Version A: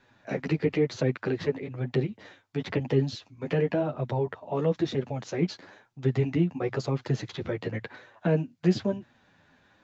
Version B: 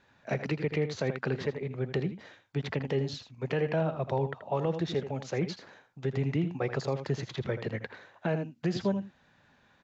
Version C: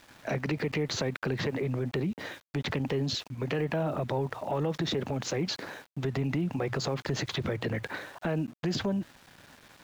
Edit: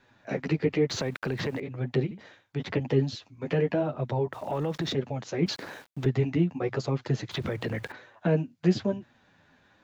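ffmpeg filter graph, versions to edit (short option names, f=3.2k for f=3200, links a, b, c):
-filter_complex "[2:a]asplit=4[a][b][c][d];[0:a]asplit=6[e][f][g][h][i][j];[e]atrim=end=0.902[k];[a]atrim=start=0.898:end=1.602[l];[f]atrim=start=1.598:end=2.112[m];[1:a]atrim=start=2.108:end=2.602[n];[g]atrim=start=2.598:end=4.332[o];[b]atrim=start=4.328:end=4.932[p];[h]atrim=start=4.928:end=5.462[q];[c]atrim=start=5.458:end=6.062[r];[i]atrim=start=6.058:end=7.312[s];[d]atrim=start=7.308:end=7.922[t];[j]atrim=start=7.918[u];[k][l]acrossfade=d=0.004:c1=hsin:c2=hsin[v];[v][m]acrossfade=d=0.004:c1=hsin:c2=hsin[w];[w][n]acrossfade=d=0.004:c1=hsin:c2=hsin[x];[x][o]acrossfade=d=0.004:c1=hsin:c2=hsin[y];[y][p]acrossfade=d=0.004:c1=hsin:c2=hsin[z];[z][q]acrossfade=d=0.004:c1=hsin:c2=hsin[aa];[aa][r]acrossfade=d=0.004:c1=hsin:c2=hsin[ab];[ab][s]acrossfade=d=0.004:c1=hsin:c2=hsin[ac];[ac][t]acrossfade=d=0.004:c1=hsin:c2=hsin[ad];[ad][u]acrossfade=d=0.004:c1=hsin:c2=hsin"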